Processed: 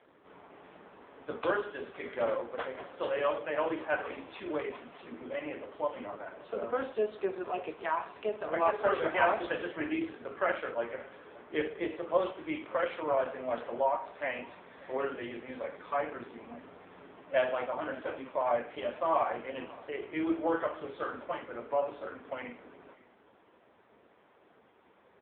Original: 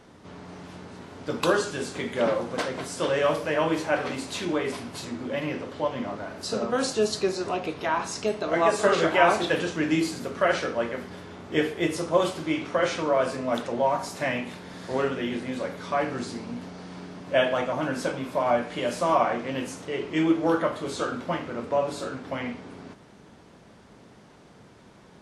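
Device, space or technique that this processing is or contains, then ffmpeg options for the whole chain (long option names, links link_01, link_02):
satellite phone: -af "highpass=370,lowpass=3100,aecho=1:1:569:0.0841,volume=-4dB" -ar 8000 -c:a libopencore_amrnb -b:a 5900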